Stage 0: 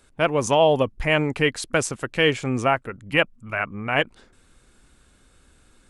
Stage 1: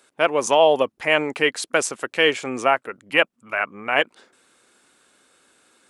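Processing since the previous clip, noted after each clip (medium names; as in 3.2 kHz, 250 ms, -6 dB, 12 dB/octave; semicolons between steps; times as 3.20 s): high-pass 360 Hz 12 dB/octave; trim +2.5 dB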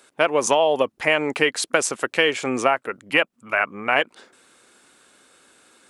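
compression 6:1, threshold -18 dBFS, peak gain reduction 8.5 dB; trim +4 dB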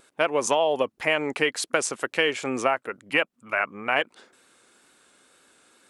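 wow and flutter 23 cents; trim -4 dB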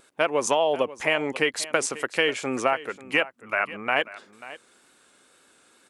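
delay 539 ms -17 dB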